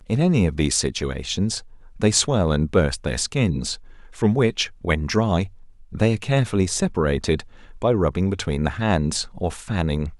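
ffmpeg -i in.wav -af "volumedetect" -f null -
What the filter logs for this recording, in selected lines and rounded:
mean_volume: -21.9 dB
max_volume: -5.1 dB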